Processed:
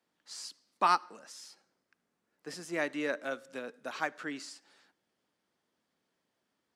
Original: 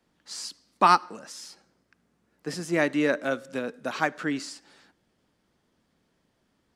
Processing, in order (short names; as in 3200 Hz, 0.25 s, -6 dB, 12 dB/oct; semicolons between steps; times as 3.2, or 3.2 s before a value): HPF 400 Hz 6 dB/oct; gain -7 dB